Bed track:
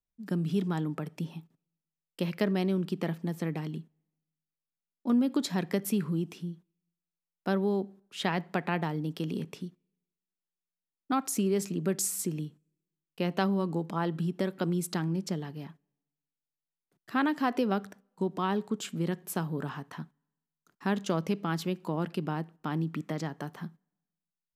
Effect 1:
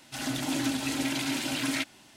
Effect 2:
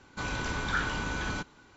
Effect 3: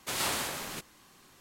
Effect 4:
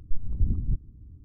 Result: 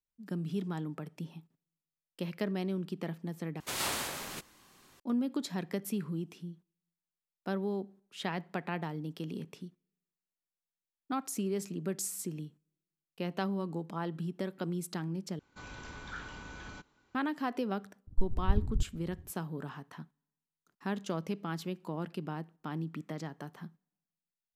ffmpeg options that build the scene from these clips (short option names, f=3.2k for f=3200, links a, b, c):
-filter_complex "[0:a]volume=-6dB[a];[4:a]tremolo=f=16:d=0.74[b];[a]asplit=3[c][d][e];[c]atrim=end=3.604[f];[3:a]atrim=end=1.4,asetpts=PTS-STARTPTS,volume=-2.5dB[g];[d]atrim=start=4.996:end=15.394[h];[2:a]atrim=end=1.76,asetpts=PTS-STARTPTS,volume=-13.5dB[i];[e]atrim=start=17.146[j];[b]atrim=end=1.24,asetpts=PTS-STARTPTS,volume=-1dB,afade=t=in:d=0.004:c=hsin,afade=t=out:st=1.236:d=0.004:c=hsin,adelay=18070[k];[f][g]acrossfade=d=0.004:c1=hsin:c2=hsin[l];[l][h]acrossfade=d=0.004:c1=hsin:c2=hsin[m];[m][i]acrossfade=d=0.004:c1=hsin:c2=hsin[n];[n][j]acrossfade=d=0.004:c1=hsin:c2=hsin[o];[o][k]amix=inputs=2:normalize=0"